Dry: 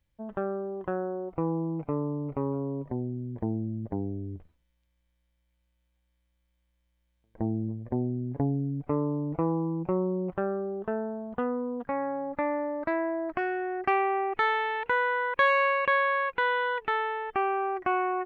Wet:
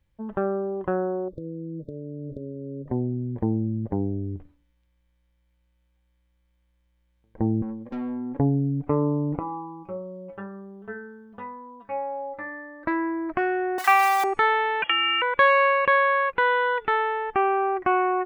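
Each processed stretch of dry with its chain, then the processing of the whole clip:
1.28–2.88 compressor 12:1, threshold -36 dBFS + brick-wall FIR band-stop 640–3400 Hz
7.62–8.39 HPF 160 Hz + tube stage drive 37 dB, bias 0.4 + comb 3.7 ms, depth 79%
9.39–12.85 high shelf 2500 Hz +12 dB + metallic resonator 100 Hz, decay 0.4 s, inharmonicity 0.008
13.78–14.24 zero-crossing step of -34.5 dBFS + resonant high-pass 840 Hz, resonance Q 1.5 + tilt +4 dB/oct
14.82–15.22 comb 5.7 ms, depth 72% + inverted band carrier 3300 Hz + three-band squash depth 70%
whole clip: high shelf 3300 Hz -7.5 dB; notch 660 Hz, Q 12; de-hum 288.7 Hz, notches 31; gain +6 dB

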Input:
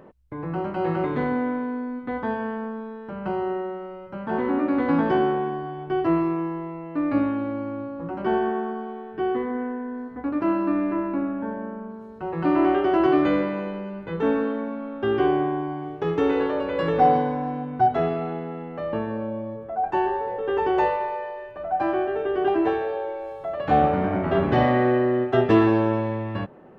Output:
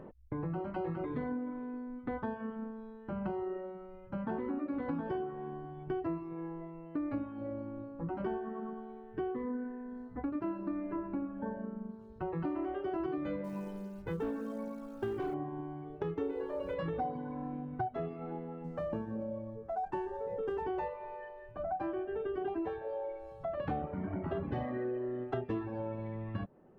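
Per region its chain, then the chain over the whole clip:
13.44–15.34 companded quantiser 6-bit + hard clip -17.5 dBFS
16.21–16.74 bell 400 Hz +6.5 dB 0.85 oct + added noise pink -53 dBFS
18.64–20.63 median filter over 9 samples + bell 180 Hz +4 dB 0.37 oct
whole clip: reverb removal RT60 1.5 s; tilt -2 dB/oct; compressor 6:1, threshold -30 dBFS; gain -4 dB

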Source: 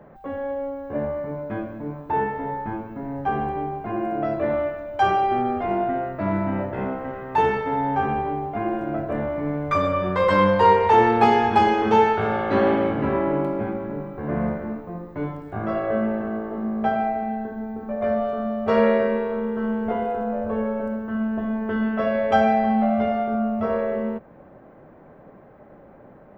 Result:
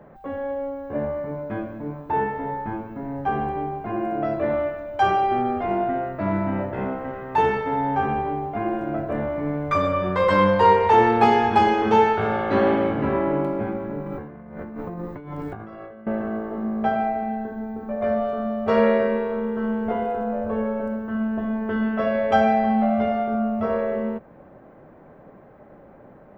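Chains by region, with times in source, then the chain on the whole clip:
14.06–16.07 notch 630 Hz, Q 8 + negative-ratio compressor -36 dBFS
whole clip: dry

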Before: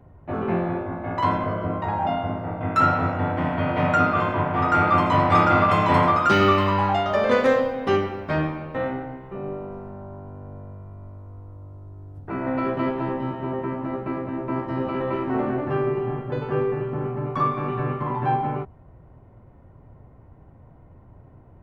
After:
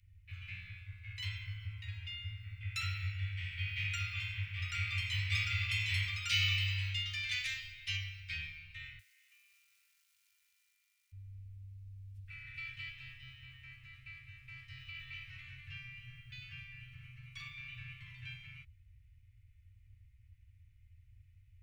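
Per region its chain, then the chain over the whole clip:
8.99–11.12 HPF 900 Hz 24 dB/oct + short-mantissa float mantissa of 2-bit + compressor 4:1, threshold -49 dBFS
whole clip: Chebyshev band-stop 100–2300 Hz, order 4; low shelf 240 Hz -10 dB

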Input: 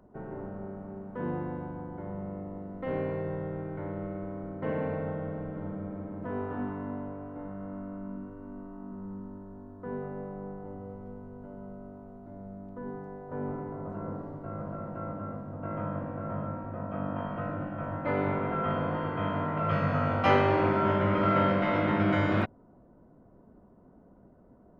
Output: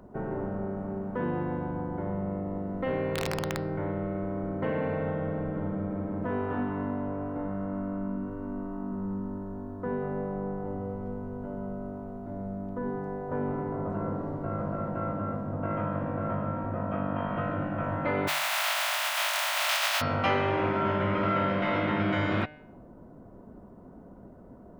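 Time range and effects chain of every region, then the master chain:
3.15–3.6 self-modulated delay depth 0.096 ms + wrapped overs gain 25.5 dB
18.27–20 spectral contrast lowered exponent 0.23 + brick-wall FIR high-pass 560 Hz
whole clip: de-hum 151.1 Hz, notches 36; dynamic EQ 3200 Hz, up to +5 dB, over -50 dBFS, Q 0.74; compressor 2.5:1, threshold -37 dBFS; gain +8 dB

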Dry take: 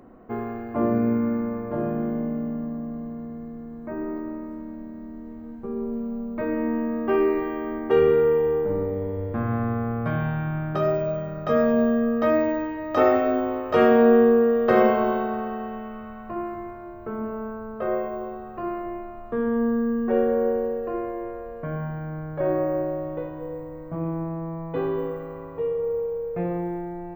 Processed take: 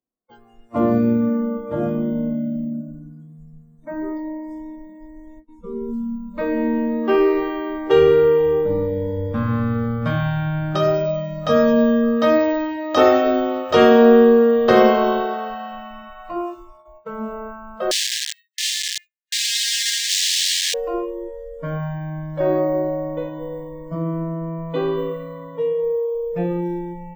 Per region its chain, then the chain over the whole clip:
17.91–20.74 wrapped overs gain 27 dB + brick-wall FIR high-pass 1600 Hz
whole clip: gate with hold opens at -31 dBFS; spectral noise reduction 28 dB; band shelf 5100 Hz +11.5 dB; gain +5 dB

